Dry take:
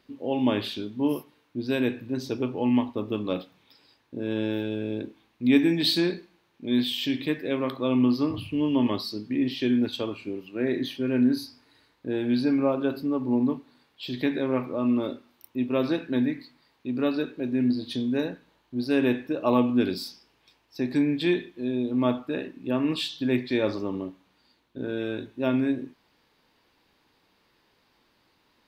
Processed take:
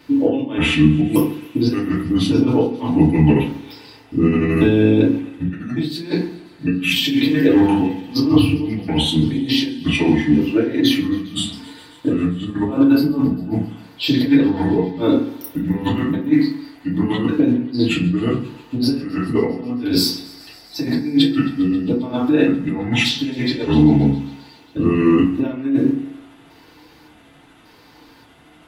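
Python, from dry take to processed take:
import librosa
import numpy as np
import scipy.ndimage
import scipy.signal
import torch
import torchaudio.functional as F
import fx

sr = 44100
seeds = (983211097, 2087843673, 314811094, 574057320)

y = fx.pitch_trill(x, sr, semitones=-5.0, every_ms=576)
y = fx.high_shelf(y, sr, hz=3400.0, db=3.5)
y = fx.over_compress(y, sr, threshold_db=-31.0, ratio=-0.5)
y = fx.echo_thinned(y, sr, ms=134, feedback_pct=82, hz=360.0, wet_db=-21.0)
y = fx.rev_fdn(y, sr, rt60_s=0.45, lf_ratio=1.45, hf_ratio=0.5, size_ms=20.0, drr_db=-6.0)
y = y * 10.0 ** (5.0 / 20.0)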